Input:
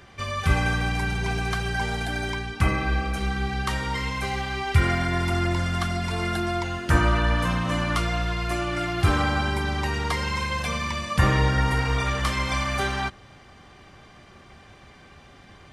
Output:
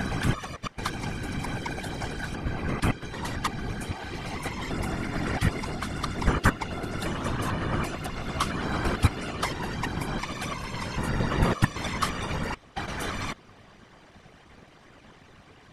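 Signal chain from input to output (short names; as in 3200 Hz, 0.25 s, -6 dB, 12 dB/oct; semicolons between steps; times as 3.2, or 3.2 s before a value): slices in reverse order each 0.112 s, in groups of 7; harmonic-percussive split harmonic -12 dB; whisperiser; gain +2 dB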